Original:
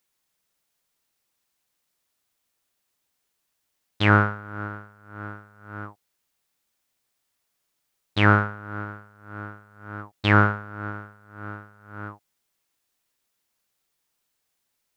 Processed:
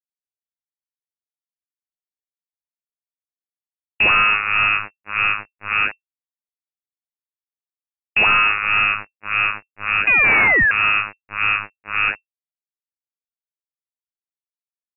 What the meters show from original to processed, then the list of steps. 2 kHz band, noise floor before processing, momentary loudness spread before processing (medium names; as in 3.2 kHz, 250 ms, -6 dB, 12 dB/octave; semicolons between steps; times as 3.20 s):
+12.0 dB, -77 dBFS, 22 LU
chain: painted sound rise, 10.07–10.71 s, 210–1100 Hz -14 dBFS; fuzz box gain 41 dB, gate -41 dBFS; frequency inversion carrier 2.7 kHz